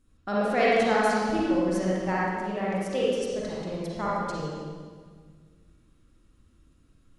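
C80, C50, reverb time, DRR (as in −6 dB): −1.5 dB, −5.0 dB, 1.7 s, −7.5 dB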